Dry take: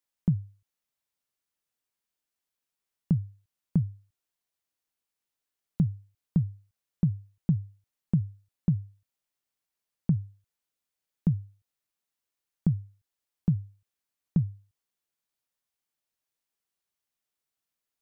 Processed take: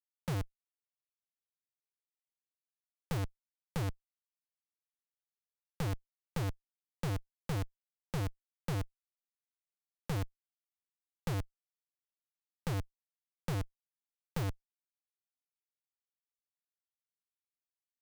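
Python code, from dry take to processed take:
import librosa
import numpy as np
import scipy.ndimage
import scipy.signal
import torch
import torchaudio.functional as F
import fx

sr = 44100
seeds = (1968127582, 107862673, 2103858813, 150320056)

y = fx.self_delay(x, sr, depth_ms=0.37)
y = fx.schmitt(y, sr, flips_db=-36.5)
y = fx.band_squash(y, sr, depth_pct=40)
y = y * 10.0 ** (2.0 / 20.0)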